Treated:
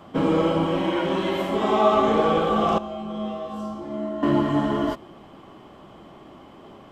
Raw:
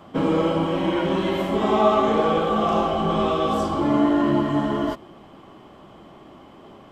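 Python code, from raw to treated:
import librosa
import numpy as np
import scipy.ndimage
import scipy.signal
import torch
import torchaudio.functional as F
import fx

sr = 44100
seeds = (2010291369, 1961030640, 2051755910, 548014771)

y = fx.low_shelf(x, sr, hz=180.0, db=-7.5, at=(0.82, 1.93))
y = fx.comb_fb(y, sr, f0_hz=71.0, decay_s=0.71, harmonics='odd', damping=0.0, mix_pct=90, at=(2.78, 4.23))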